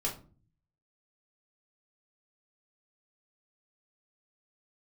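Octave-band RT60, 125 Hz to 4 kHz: 0.90, 0.70, 0.45, 0.35, 0.25, 0.25 seconds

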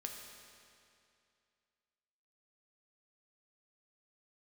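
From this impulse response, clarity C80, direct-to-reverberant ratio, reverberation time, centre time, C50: 4.5 dB, 1.5 dB, 2.5 s, 76 ms, 3.5 dB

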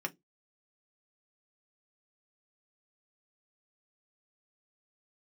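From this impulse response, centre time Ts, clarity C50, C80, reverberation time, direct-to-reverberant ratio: 4 ms, 26.5 dB, 37.0 dB, 0.15 s, 3.5 dB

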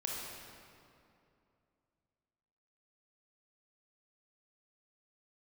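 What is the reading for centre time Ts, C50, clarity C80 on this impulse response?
128 ms, −1.5 dB, 0.5 dB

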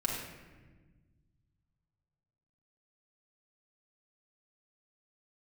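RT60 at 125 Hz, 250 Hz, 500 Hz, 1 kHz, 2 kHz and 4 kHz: 2.9, 2.1, 1.5, 1.2, 1.3, 0.85 seconds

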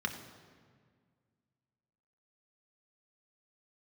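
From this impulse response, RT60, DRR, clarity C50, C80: 1.8 s, 3.5 dB, 8.5 dB, 10.0 dB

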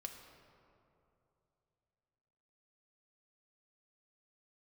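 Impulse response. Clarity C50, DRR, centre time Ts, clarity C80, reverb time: 6.0 dB, 3.5 dB, 48 ms, 7.0 dB, 2.9 s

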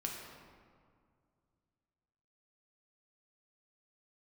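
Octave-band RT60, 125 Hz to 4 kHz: 3.0, 2.6, 2.2, 2.0, 1.5, 1.1 seconds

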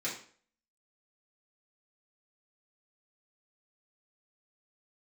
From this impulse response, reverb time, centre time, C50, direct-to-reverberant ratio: 0.50 s, 29 ms, 6.5 dB, −7.5 dB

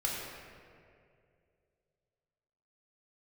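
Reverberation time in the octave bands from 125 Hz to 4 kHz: 2.9, 2.4, 2.8, 2.0, 2.0, 1.3 seconds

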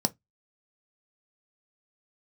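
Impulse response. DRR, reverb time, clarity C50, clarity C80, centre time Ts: 8.5 dB, 0.15 s, 27.5 dB, 40.0 dB, 3 ms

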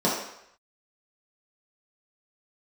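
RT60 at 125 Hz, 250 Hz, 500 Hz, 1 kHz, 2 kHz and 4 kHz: 0.55, 0.55, 0.70, 0.75, 0.80, 0.70 seconds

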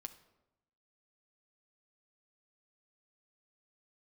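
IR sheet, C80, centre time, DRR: 16.5 dB, 7 ms, 7.0 dB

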